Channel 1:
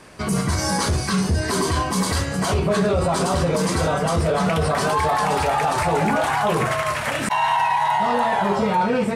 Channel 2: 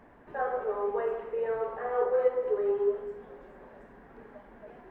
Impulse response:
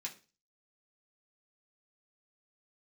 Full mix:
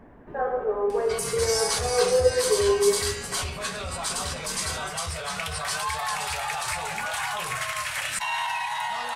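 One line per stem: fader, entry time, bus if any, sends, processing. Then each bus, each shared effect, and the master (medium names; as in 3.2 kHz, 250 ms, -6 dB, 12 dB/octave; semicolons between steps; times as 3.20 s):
-1.0 dB, 0.90 s, send -7 dB, amplifier tone stack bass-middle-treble 10-0-10; upward compressor, threshold -49 dBFS
+1.0 dB, 0.00 s, no send, bass shelf 460 Hz +9 dB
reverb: on, RT60 0.35 s, pre-delay 3 ms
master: none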